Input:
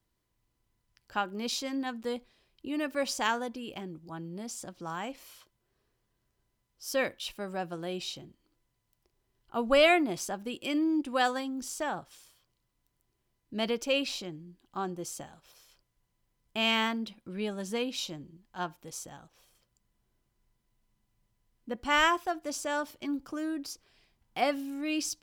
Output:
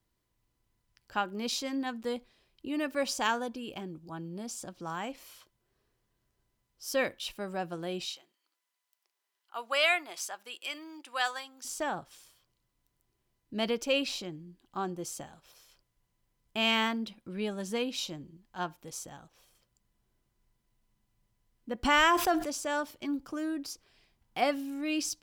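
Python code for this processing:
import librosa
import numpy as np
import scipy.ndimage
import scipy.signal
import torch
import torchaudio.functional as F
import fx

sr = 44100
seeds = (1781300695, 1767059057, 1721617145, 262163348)

y = fx.notch(x, sr, hz=2000.0, q=12.0, at=(3.07, 4.76))
y = fx.highpass(y, sr, hz=990.0, slope=12, at=(8.05, 11.65))
y = fx.env_flatten(y, sr, amount_pct=70, at=(21.83, 22.44), fade=0.02)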